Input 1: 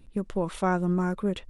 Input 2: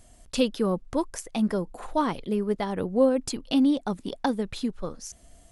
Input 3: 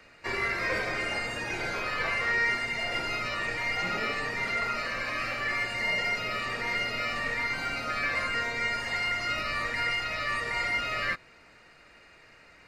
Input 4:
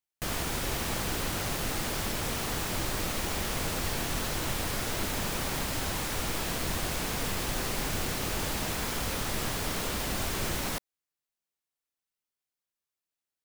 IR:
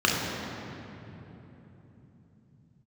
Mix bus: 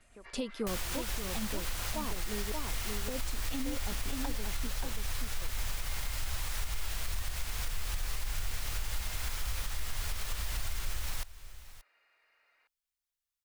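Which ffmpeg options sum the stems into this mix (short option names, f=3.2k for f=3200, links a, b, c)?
-filter_complex "[0:a]volume=-4.5dB[a];[1:a]agate=range=-33dB:threshold=-51dB:ratio=3:detection=peak,volume=-8.5dB,asplit=3[b][c][d];[b]atrim=end=2.52,asetpts=PTS-STARTPTS,afade=t=out:st=2.516:d=0.004:c=hsin[e];[c]atrim=start=2.52:end=3.08,asetpts=PTS-STARTPTS,volume=0[f];[d]atrim=start=3.08,asetpts=PTS-STARTPTS,afade=t=in:d=0.004:c=hsin[g];[e][f][g]concat=n=3:v=0:a=1,asplit=2[h][i];[i]volume=-4dB[j];[2:a]volume=-14.5dB[k];[3:a]equalizer=f=310:t=o:w=2.7:g=-12.5,adelay=450,volume=-0.5dB,asplit=2[l][m];[m]volume=-21.5dB[n];[a][k]amix=inputs=2:normalize=0,highpass=640,lowpass=4.2k,alimiter=level_in=18dB:limit=-24dB:level=0:latency=1:release=161,volume=-18dB,volume=0dB[o];[j][n]amix=inputs=2:normalize=0,aecho=0:1:580:1[p];[h][l][o][p]amix=inputs=4:normalize=0,asubboost=boost=4.5:cutoff=78,alimiter=level_in=0.5dB:limit=-24dB:level=0:latency=1:release=181,volume=-0.5dB"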